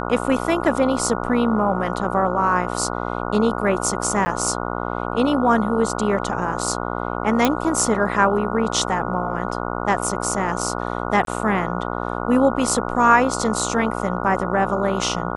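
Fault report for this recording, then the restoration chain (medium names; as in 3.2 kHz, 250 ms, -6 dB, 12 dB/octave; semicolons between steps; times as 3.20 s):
buzz 60 Hz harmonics 24 -26 dBFS
4.25–4.26 s: dropout 10 ms
7.45 s: pop -2 dBFS
11.25–11.27 s: dropout 22 ms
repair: de-click; de-hum 60 Hz, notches 24; interpolate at 4.25 s, 10 ms; interpolate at 11.25 s, 22 ms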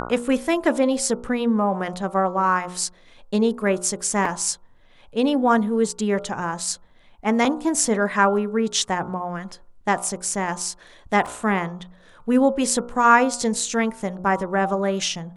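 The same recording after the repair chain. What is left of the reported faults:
7.45 s: pop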